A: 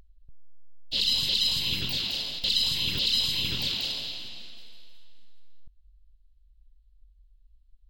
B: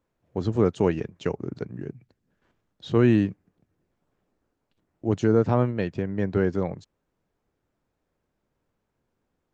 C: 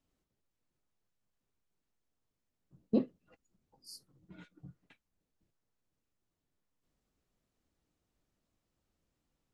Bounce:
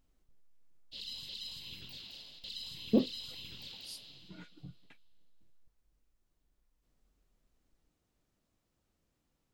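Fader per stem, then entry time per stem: −19.0 dB, muted, +2.5 dB; 0.00 s, muted, 0.00 s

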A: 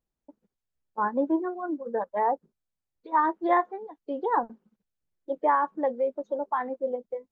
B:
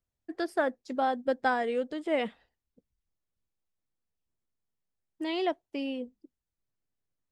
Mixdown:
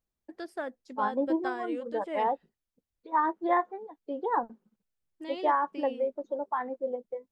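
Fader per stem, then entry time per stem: −3.0, −8.0 decibels; 0.00, 0.00 seconds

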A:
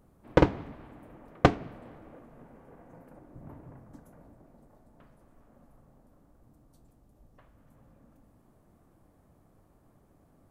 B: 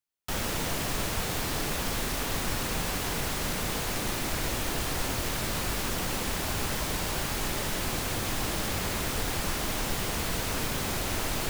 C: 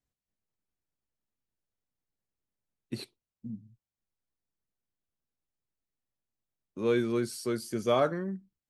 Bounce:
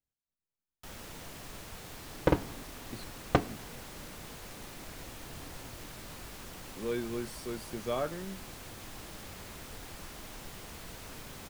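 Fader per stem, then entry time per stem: −5.5, −15.5, −7.5 decibels; 1.90, 0.55, 0.00 seconds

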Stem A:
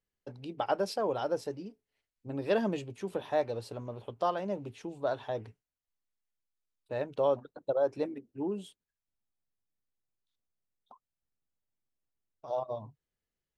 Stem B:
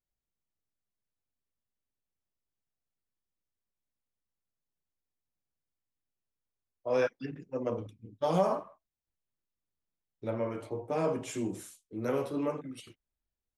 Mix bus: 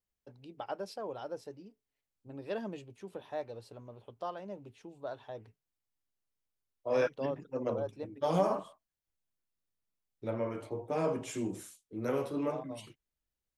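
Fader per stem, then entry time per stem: −9.0, −1.5 decibels; 0.00, 0.00 seconds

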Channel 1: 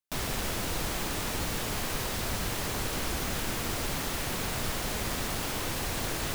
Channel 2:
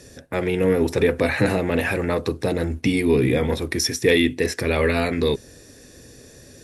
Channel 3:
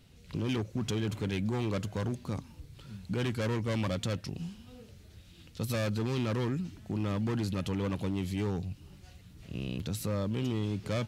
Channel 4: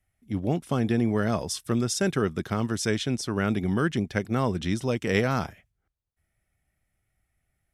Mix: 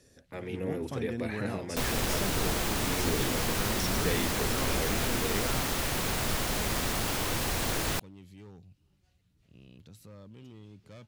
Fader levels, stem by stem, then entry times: +2.0, −16.0, −17.5, −12.0 decibels; 1.65, 0.00, 0.00, 0.20 seconds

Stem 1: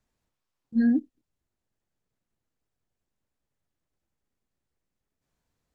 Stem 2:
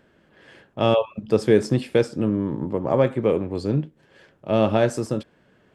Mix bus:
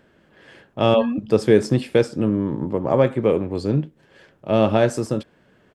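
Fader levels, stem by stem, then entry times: −2.5, +2.0 decibels; 0.20, 0.00 seconds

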